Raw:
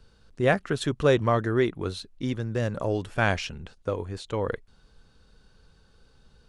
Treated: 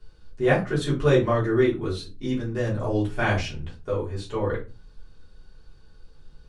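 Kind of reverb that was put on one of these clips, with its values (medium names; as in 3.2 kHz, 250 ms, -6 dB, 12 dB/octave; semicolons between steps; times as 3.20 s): simulated room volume 120 m³, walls furnished, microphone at 3.3 m; trim -7.5 dB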